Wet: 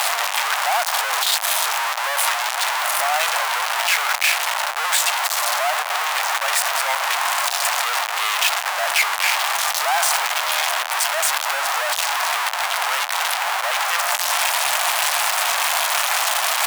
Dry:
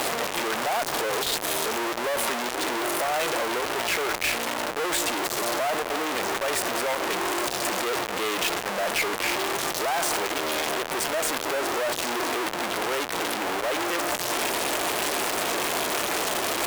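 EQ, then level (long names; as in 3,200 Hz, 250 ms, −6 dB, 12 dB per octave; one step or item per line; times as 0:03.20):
Butterworth high-pass 720 Hz 36 dB per octave
+8.0 dB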